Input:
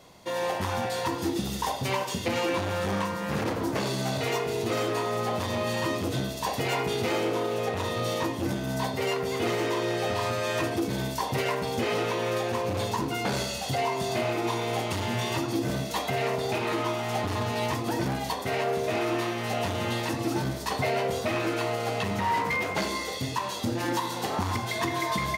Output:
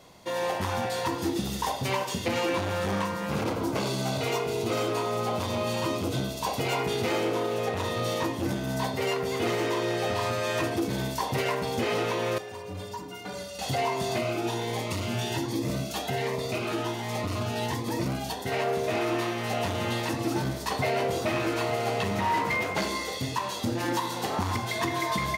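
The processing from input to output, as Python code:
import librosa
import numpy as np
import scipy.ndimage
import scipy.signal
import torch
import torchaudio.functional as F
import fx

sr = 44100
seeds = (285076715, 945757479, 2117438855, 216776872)

y = fx.notch(x, sr, hz=1800.0, q=6.1, at=(3.26, 6.81))
y = fx.stiff_resonator(y, sr, f0_hz=87.0, decay_s=0.3, stiffness=0.03, at=(12.38, 13.59))
y = fx.notch_cascade(y, sr, direction='rising', hz=1.3, at=(14.18, 18.52))
y = fx.echo_single(y, sr, ms=899, db=-10.5, at=(20.1, 22.63))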